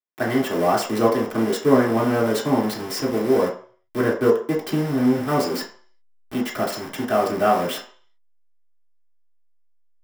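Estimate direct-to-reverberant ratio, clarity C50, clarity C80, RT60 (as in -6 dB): -6.0 dB, 7.5 dB, 12.5 dB, 0.45 s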